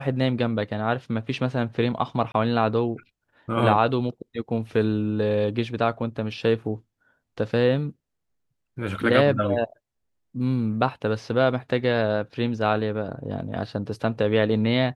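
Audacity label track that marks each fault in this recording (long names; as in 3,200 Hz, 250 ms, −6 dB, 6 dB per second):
2.320000	2.340000	drop-out 22 ms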